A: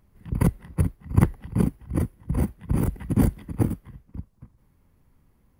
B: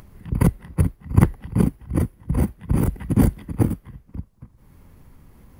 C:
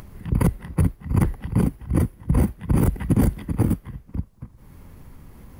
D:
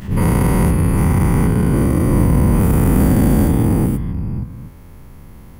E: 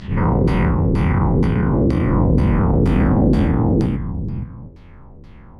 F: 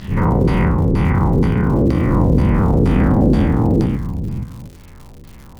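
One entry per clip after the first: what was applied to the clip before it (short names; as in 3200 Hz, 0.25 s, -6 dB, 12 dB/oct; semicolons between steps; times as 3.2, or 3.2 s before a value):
upward compressor, threshold -40 dBFS; gain +3.5 dB
maximiser +13 dB; gain -8.5 dB
spectral dilation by 0.48 s; attack slew limiter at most 210 dB/s; gain -1 dB
LFO low-pass saw down 2.1 Hz 370–4900 Hz; gain -2.5 dB
crackle 190/s -34 dBFS; gain +1.5 dB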